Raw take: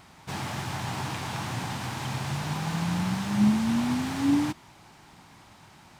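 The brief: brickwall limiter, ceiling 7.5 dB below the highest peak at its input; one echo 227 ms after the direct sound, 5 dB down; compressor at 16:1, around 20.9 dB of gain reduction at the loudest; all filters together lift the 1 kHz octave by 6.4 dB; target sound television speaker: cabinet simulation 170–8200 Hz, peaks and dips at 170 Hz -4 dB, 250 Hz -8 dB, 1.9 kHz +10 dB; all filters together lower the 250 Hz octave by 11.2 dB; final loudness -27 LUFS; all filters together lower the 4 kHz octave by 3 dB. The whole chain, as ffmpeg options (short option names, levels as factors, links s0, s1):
-af "equalizer=f=250:t=o:g=-8,equalizer=f=1000:t=o:g=8,equalizer=f=4000:t=o:g=-5,acompressor=threshold=0.00708:ratio=16,alimiter=level_in=7.08:limit=0.0631:level=0:latency=1,volume=0.141,highpass=f=170:w=0.5412,highpass=f=170:w=1.3066,equalizer=f=170:t=q:w=4:g=-4,equalizer=f=250:t=q:w=4:g=-8,equalizer=f=1900:t=q:w=4:g=10,lowpass=f=8200:w=0.5412,lowpass=f=8200:w=1.3066,aecho=1:1:227:0.562,volume=11.9"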